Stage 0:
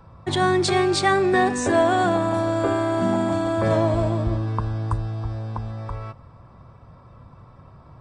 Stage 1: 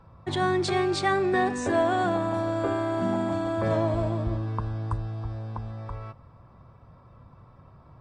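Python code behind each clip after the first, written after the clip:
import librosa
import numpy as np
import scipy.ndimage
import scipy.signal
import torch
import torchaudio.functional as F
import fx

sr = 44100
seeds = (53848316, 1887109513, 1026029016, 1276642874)

y = fx.high_shelf(x, sr, hz=7200.0, db=-8.5)
y = F.gain(torch.from_numpy(y), -5.0).numpy()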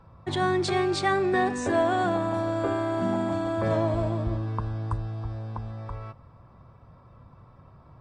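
y = x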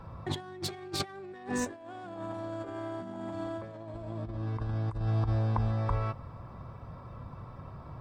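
y = fx.self_delay(x, sr, depth_ms=0.061)
y = fx.over_compress(y, sr, threshold_db=-33.0, ratio=-0.5)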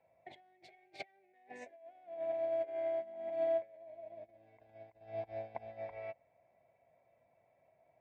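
y = fx.double_bandpass(x, sr, hz=1200.0, octaves=1.7)
y = fx.upward_expand(y, sr, threshold_db=-52.0, expansion=2.5)
y = F.gain(torch.from_numpy(y), 9.5).numpy()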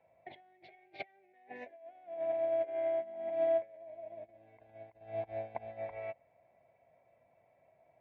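y = scipy.signal.sosfilt(scipy.signal.butter(4, 3600.0, 'lowpass', fs=sr, output='sos'), x)
y = F.gain(torch.from_numpy(y), 3.0).numpy()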